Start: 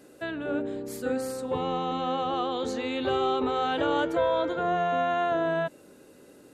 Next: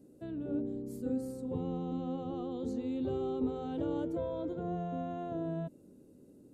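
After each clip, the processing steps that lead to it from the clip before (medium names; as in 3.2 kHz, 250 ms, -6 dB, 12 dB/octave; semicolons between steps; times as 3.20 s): FFT filter 230 Hz 0 dB, 1.7 kHz -27 dB, 9.6 kHz -14 dB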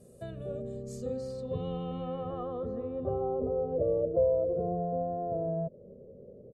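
comb 1.7 ms, depth 98%; in parallel at +2 dB: compression, threshold -43 dBFS, peak gain reduction 14.5 dB; on the sum: low-pass sweep 10 kHz -> 530 Hz, 0.49–3.67 s; trim -2.5 dB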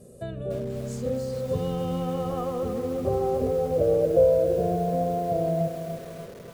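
bit-crushed delay 293 ms, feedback 55%, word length 8-bit, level -8 dB; trim +6.5 dB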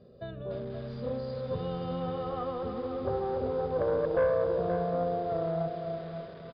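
valve stage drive 15 dB, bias 0.3; rippled Chebyshev low-pass 5 kHz, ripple 6 dB; delay 526 ms -9 dB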